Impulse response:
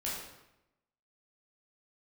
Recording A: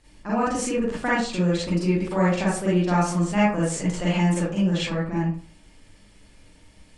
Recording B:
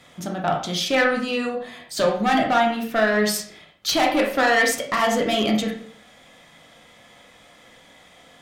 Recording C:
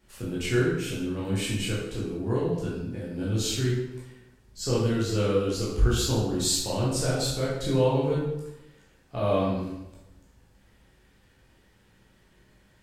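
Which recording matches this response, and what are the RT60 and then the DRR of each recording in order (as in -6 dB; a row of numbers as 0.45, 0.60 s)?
C; 0.40, 0.55, 0.90 s; -8.5, 0.5, -7.0 dB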